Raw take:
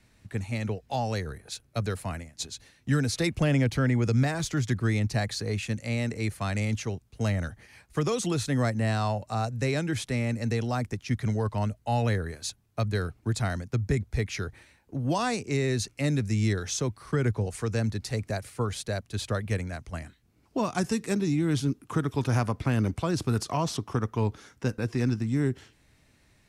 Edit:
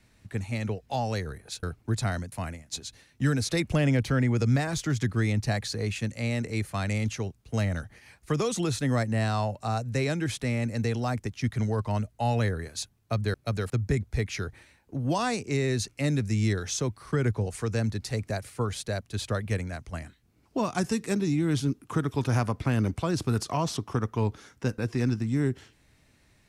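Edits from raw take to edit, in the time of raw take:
1.63–1.99 swap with 13.01–13.7

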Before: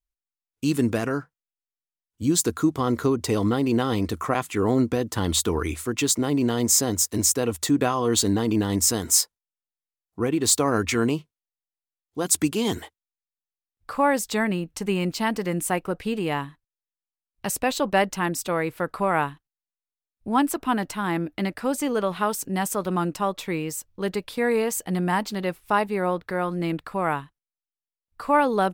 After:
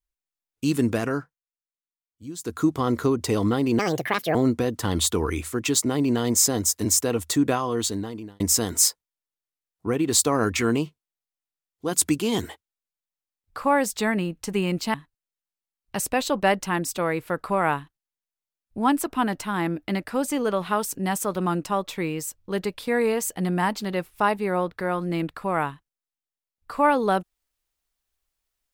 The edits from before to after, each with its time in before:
1.19–2.63 dip -15 dB, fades 0.23 s
3.79–4.68 speed 159%
7.77–8.73 fade out linear
15.27–16.44 cut

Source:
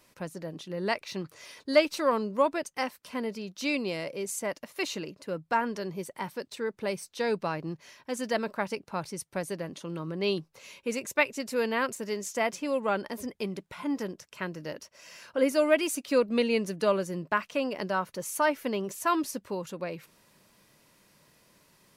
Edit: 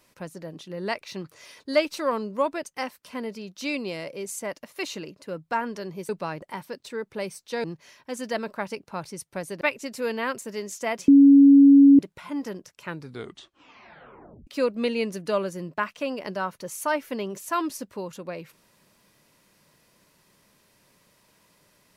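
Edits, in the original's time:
7.31–7.64 move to 6.09
9.61–11.15 cut
12.62–13.53 bleep 279 Hz -9 dBFS
14.34 tape stop 1.67 s

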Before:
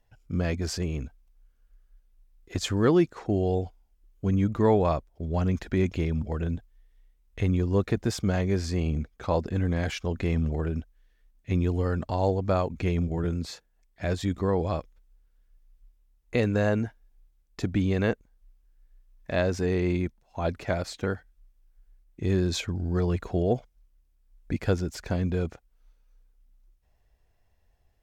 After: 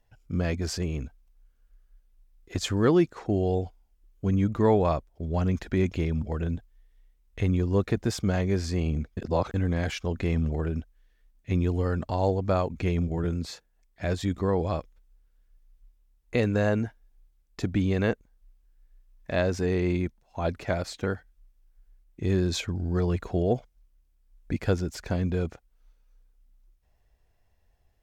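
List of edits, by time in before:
9.17–9.54 reverse

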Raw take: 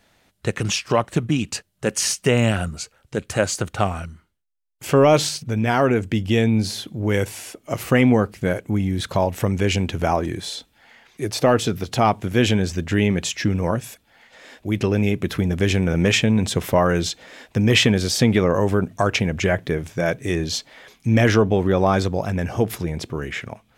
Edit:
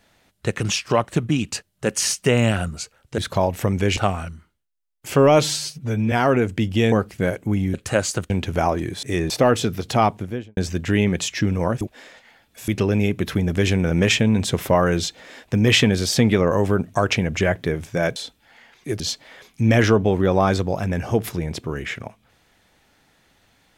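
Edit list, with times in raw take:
3.18–3.74 swap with 8.97–9.76
5.2–5.66 stretch 1.5×
6.46–8.15 cut
10.49–11.33 swap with 20.19–20.46
12.04–12.6 studio fade out
13.84–14.71 reverse

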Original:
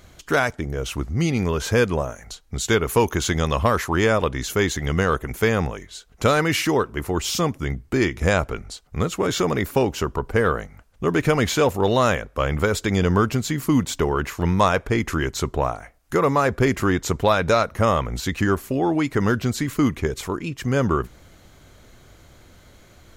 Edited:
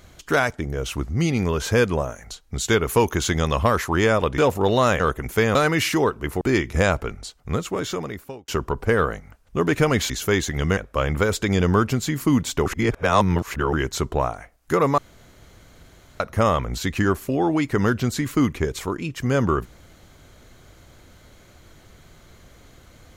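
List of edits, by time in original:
4.38–5.05 swap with 11.57–12.19
5.6–6.28 cut
7.14–7.88 cut
8.85–9.95 fade out
14.08–15.15 reverse
16.4–17.62 room tone

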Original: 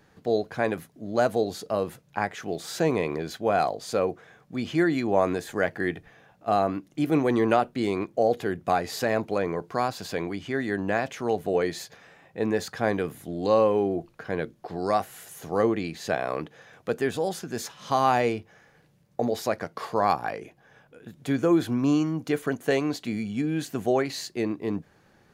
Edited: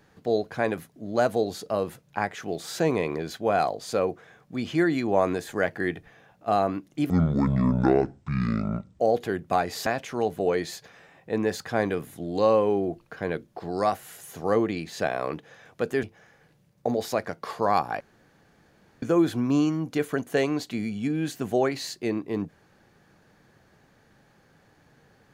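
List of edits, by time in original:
7.1–8.16 speed 56%
9.03–10.94 cut
17.11–18.37 cut
20.34–21.36 room tone

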